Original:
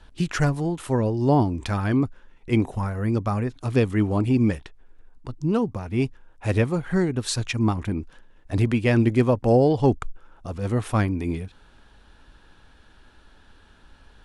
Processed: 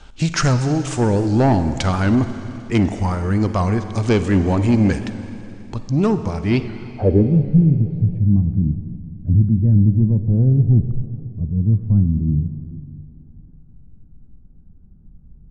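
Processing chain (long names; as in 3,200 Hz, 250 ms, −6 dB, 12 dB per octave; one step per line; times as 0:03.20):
soft clipping −16.5 dBFS, distortion −14 dB
low-pass filter sweep 7,300 Hz → 170 Hz, 0:05.91–0:06.77
four-comb reverb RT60 2.6 s, DRR 9.5 dB
wrong playback speed 48 kHz file played as 44.1 kHz
wow of a warped record 78 rpm, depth 100 cents
level +7 dB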